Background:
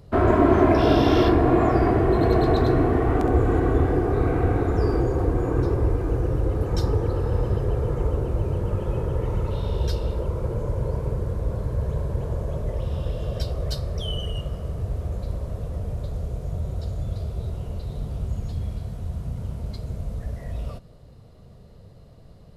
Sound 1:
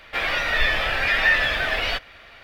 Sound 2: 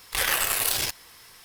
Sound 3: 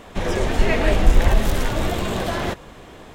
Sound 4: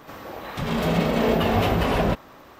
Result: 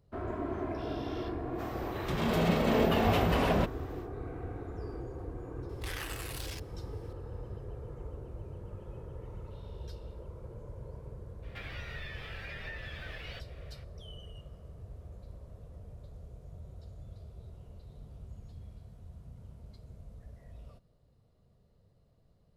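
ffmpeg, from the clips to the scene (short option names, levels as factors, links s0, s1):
-filter_complex "[0:a]volume=0.112[s0];[2:a]highshelf=f=8400:g=-10.5[s1];[1:a]acrossover=split=490|1200[s2][s3][s4];[s2]acompressor=threshold=0.0178:ratio=4[s5];[s3]acompressor=threshold=0.00398:ratio=4[s6];[s4]acompressor=threshold=0.0282:ratio=4[s7];[s5][s6][s7]amix=inputs=3:normalize=0[s8];[4:a]atrim=end=2.59,asetpts=PTS-STARTPTS,volume=0.501,afade=t=in:d=0.1,afade=t=out:st=2.49:d=0.1,adelay=1510[s9];[s1]atrim=end=1.44,asetpts=PTS-STARTPTS,volume=0.178,afade=t=in:d=0.004:c=hsin,afade=t=out:st=1.436:d=0.004:c=hsin,adelay=250929S[s10];[s8]atrim=end=2.43,asetpts=PTS-STARTPTS,volume=0.188,afade=t=in:d=0.02,afade=t=out:st=2.41:d=0.02,adelay=11420[s11];[s0][s9][s10][s11]amix=inputs=4:normalize=0"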